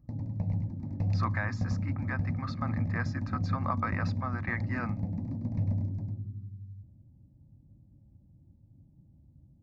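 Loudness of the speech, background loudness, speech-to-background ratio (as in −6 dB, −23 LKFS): −37.5 LKFS, −33.5 LKFS, −4.0 dB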